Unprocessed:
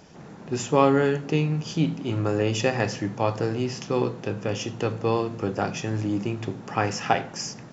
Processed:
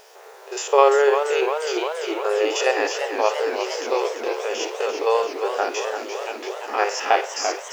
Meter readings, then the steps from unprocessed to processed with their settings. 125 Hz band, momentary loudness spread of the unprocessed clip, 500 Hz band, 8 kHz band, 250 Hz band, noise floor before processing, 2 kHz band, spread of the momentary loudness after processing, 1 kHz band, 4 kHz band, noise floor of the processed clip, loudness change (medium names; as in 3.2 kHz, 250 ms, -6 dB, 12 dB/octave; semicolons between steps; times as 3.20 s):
under -40 dB, 9 LU, +6.0 dB, no reading, -8.5 dB, -43 dBFS, +6.0 dB, 10 LU, +6.0 dB, +5.5 dB, -44 dBFS, +3.5 dB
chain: spectrogram pixelated in time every 50 ms; word length cut 10-bit, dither none; brick-wall FIR high-pass 380 Hz; modulated delay 344 ms, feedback 72%, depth 125 cents, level -8 dB; trim +6 dB